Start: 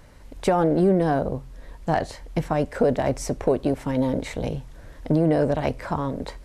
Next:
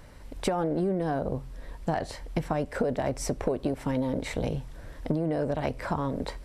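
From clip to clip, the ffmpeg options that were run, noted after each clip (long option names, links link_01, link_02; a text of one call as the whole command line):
ffmpeg -i in.wav -af "bandreject=frequency=6600:width=17,acompressor=threshold=-24dB:ratio=6" out.wav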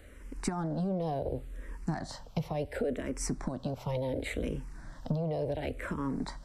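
ffmpeg -i in.wav -filter_complex "[0:a]acrossover=split=350|2400[link_01][link_02][link_03];[link_02]alimiter=level_in=3dB:limit=-24dB:level=0:latency=1,volume=-3dB[link_04];[link_01][link_04][link_03]amix=inputs=3:normalize=0,asplit=2[link_05][link_06];[link_06]afreqshift=-0.7[link_07];[link_05][link_07]amix=inputs=2:normalize=1" out.wav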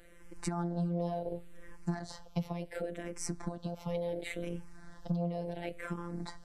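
ffmpeg -i in.wav -af "afftfilt=real='hypot(re,im)*cos(PI*b)':imag='0':win_size=1024:overlap=0.75" out.wav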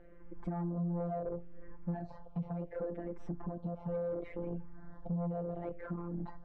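ffmpeg -i in.wav -af "asoftclip=type=tanh:threshold=-33.5dB,lowpass=1000,volume=3dB" out.wav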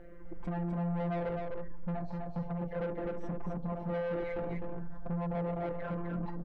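ffmpeg -i in.wav -af "asoftclip=type=tanh:threshold=-38.5dB,aecho=1:1:254:0.631,volume=6.5dB" out.wav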